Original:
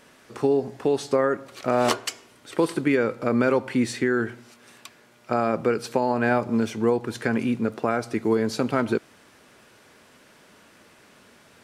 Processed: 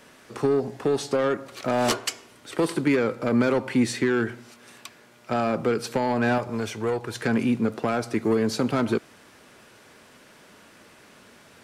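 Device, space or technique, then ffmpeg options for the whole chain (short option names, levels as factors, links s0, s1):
one-band saturation: -filter_complex "[0:a]acrossover=split=260|3600[s0][s1][s2];[s1]asoftclip=type=tanh:threshold=0.0841[s3];[s0][s3][s2]amix=inputs=3:normalize=0,asettb=1/sr,asplit=3[s4][s5][s6];[s4]atrim=end=6.384[s7];[s5]atrim=start=6.38:end=7.22,asetpts=PTS-STARTPTS,afade=t=in:d=0.004:c=qsin,afade=t=out:st=0.836:d=0.004:c=qsin,equalizer=f=240:t=o:w=1.1:g=-10[s8];[s6]atrim=start=7.216[s9];[s7][s8]acrossfade=d=0.004:c1=hsin:c2=qsin[s10];[s10][s9]acrossfade=d=0.004:c1=qsin:c2=hsin,volume=1.26"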